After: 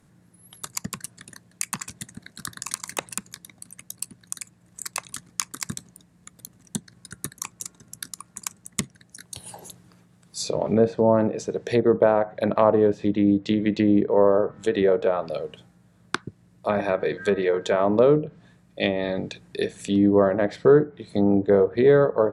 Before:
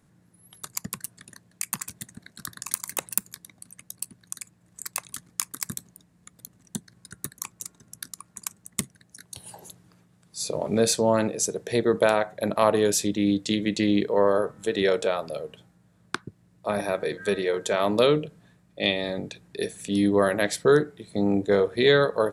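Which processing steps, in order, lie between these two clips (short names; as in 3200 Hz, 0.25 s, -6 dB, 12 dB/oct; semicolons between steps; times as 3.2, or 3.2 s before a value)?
treble ducked by the level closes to 1000 Hz, closed at -19 dBFS; gain +3.5 dB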